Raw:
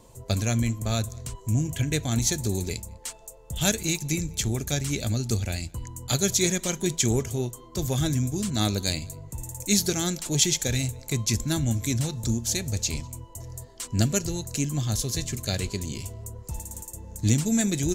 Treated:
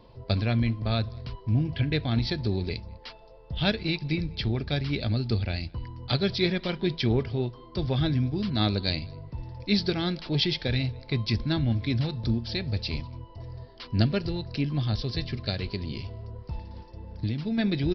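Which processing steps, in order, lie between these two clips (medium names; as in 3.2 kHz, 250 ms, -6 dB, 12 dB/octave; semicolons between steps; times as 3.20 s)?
15.49–17.58 s: compression 10:1, threshold -25 dBFS, peak gain reduction 9.5 dB; resampled via 11.025 kHz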